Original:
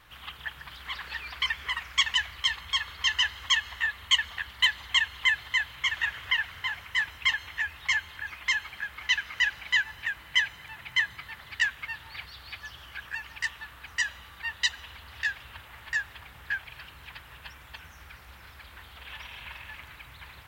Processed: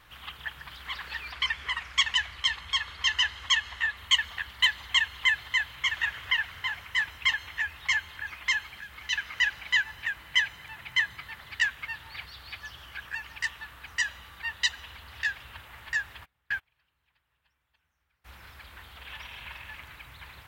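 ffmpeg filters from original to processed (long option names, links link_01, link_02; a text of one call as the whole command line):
ffmpeg -i in.wav -filter_complex "[0:a]asettb=1/sr,asplit=3[link_01][link_02][link_03];[link_01]atrim=end=1.324[link_04];[link_02]atrim=start=1.32:end=3.97,asetpts=PTS-STARTPTS,afade=type=in:duration=0.004:curve=qsin,afade=type=out:start_time=2.646:duration=0.004:curve=qsin,lowpass=10000[link_05];[link_03]atrim=start=3.966[link_06];[link_04][link_05]acrossfade=duration=0.004:curve1=hsin:curve2=qsin[link_07];[link_07][link_06]acrossfade=duration=0.004:curve1=qsin:curve2=hsin,asettb=1/sr,asplit=3[link_08][link_09][link_10];[link_08]atrim=end=8.644[link_11];[link_09]atrim=start=8.64:end=9.13,asetpts=PTS-STARTPTS,afade=type=in:duration=0.004:curve=qsin,afade=type=out:start_time=0.486:duration=0.004:curve=qsin,acrossover=split=370|3000[link_12][link_13][link_14];[link_13]acompressor=threshold=-44dB:ratio=3:attack=3.2:release=140:knee=2.83:detection=peak[link_15];[link_12][link_15][link_14]amix=inputs=3:normalize=0[link_16];[link_10]atrim=start=9.126[link_17];[link_11][link_16]acrossfade=duration=0.004:curve1=hsin:curve2=qsin[link_18];[link_18][link_17]acrossfade=duration=0.004:curve1=qsin:curve2=hsin,asplit=3[link_19][link_20][link_21];[link_19]afade=type=out:start_time=16.24:duration=0.02[link_22];[link_20]agate=range=-29dB:threshold=-37dB:ratio=16:release=100:detection=peak,afade=type=in:start_time=16.24:duration=0.02,afade=type=out:start_time=18.24:duration=0.02[link_23];[link_21]afade=type=in:start_time=18.24:duration=0.02[link_24];[link_22][link_23][link_24]amix=inputs=3:normalize=0" out.wav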